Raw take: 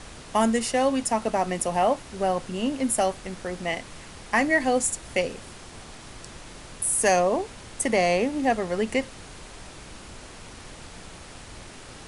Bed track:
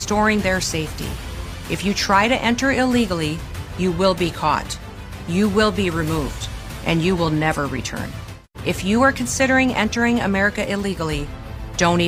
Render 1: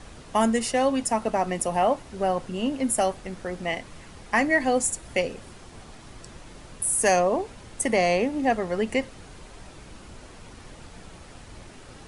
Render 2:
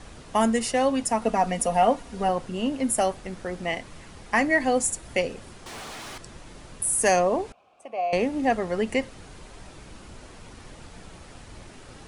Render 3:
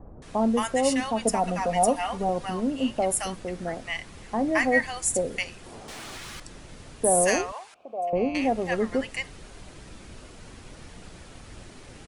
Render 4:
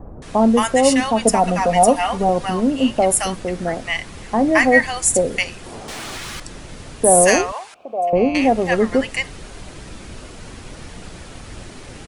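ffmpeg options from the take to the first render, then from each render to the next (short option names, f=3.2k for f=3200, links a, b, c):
-af "afftdn=nr=6:nf=-44"
-filter_complex "[0:a]asettb=1/sr,asplit=3[a][b][c];[a]atrim=end=1.214[d];[b]atrim=start=1.21:end=2.29,asetpts=PTS-STARTPTS,afade=t=in:d=0.004:c=qsin,afade=t=out:st=1.076:d=0.004:c=qsin,aecho=1:1:4.2:0.65,atrim=end_sample=47628[e];[c]atrim=start=2.286[f];[d][e]acrossfade=d=0.004:c1=hsin:c2=qsin[g];[g][f]acrossfade=d=0.004:c1=qsin:c2=hsin,asettb=1/sr,asplit=3[h][i][j];[h]atrim=end=5.664[k];[i]atrim=start=5.66:end=6.18,asetpts=PTS-STARTPTS,afade=t=in:d=0.004:c=qsin,afade=t=out:st=0.516:d=0.004:c=qsin,asplit=2[l][m];[m]highpass=f=720:p=1,volume=28dB,asoftclip=type=tanh:threshold=-31.5dB[n];[l][n]amix=inputs=2:normalize=0,lowpass=f=6.4k:p=1,volume=-6dB[o];[j]atrim=start=6.176[p];[k][o]acrossfade=d=0.004:c1=hsin:c2=qsin[q];[q][p]acrossfade=d=0.004:c1=qsin:c2=hsin,asettb=1/sr,asplit=3[r][s][t];[r]atrim=end=7.524[u];[s]atrim=start=7.52:end=8.13,asetpts=PTS-STARTPTS,afade=t=in:d=0.004:c=qsin,afade=t=out:st=0.606:d=0.004:c=qsin,asplit=3[v][w][x];[v]bandpass=f=730:t=q:w=8,volume=0dB[y];[w]bandpass=f=1.09k:t=q:w=8,volume=-6dB[z];[x]bandpass=f=2.44k:t=q:w=8,volume=-9dB[aa];[y][z][aa]amix=inputs=3:normalize=0[ab];[t]atrim=start=8.126[ac];[u][ab]acrossfade=d=0.004:c1=hsin:c2=qsin[ad];[ad][ac]acrossfade=d=0.004:c1=qsin:c2=hsin"
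-filter_complex "[0:a]acrossover=split=930[a][b];[b]adelay=220[c];[a][c]amix=inputs=2:normalize=0"
-af "volume=9dB,alimiter=limit=-1dB:level=0:latency=1"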